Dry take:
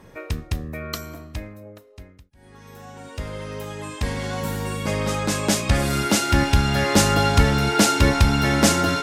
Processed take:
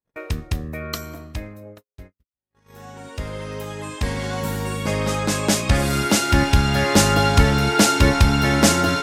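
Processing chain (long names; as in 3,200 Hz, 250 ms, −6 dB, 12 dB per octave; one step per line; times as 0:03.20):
noise gate −42 dBFS, range −49 dB
level +1.5 dB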